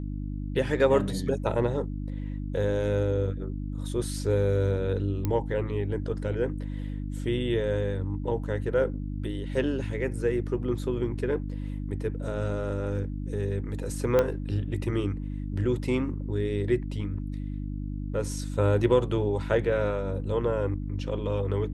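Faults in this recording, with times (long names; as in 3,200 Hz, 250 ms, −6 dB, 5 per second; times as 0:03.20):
mains hum 50 Hz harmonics 6 −33 dBFS
0:05.25: click −15 dBFS
0:14.19: click −11 dBFS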